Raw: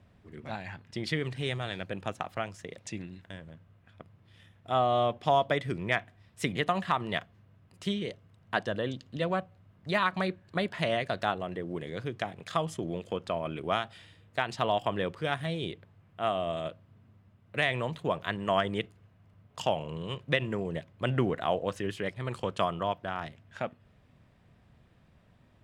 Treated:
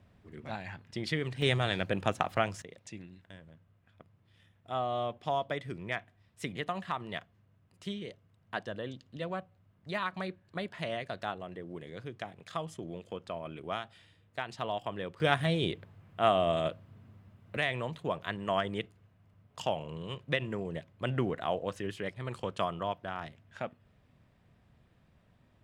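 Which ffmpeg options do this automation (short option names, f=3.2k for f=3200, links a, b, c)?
-af "asetnsamples=n=441:p=0,asendcmd='1.42 volume volume 5dB;2.62 volume volume -7dB;15.2 volume volume 4dB;17.57 volume volume -3.5dB',volume=-1.5dB"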